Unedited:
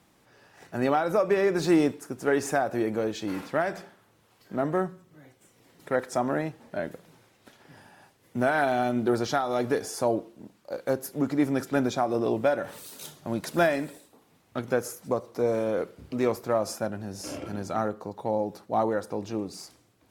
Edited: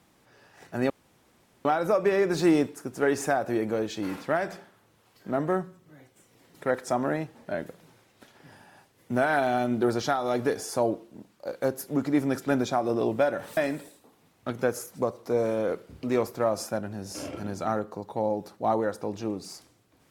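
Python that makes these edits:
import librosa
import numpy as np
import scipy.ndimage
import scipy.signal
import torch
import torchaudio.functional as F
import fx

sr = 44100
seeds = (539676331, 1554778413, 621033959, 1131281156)

y = fx.edit(x, sr, fx.insert_room_tone(at_s=0.9, length_s=0.75),
    fx.cut(start_s=12.82, length_s=0.84), tone=tone)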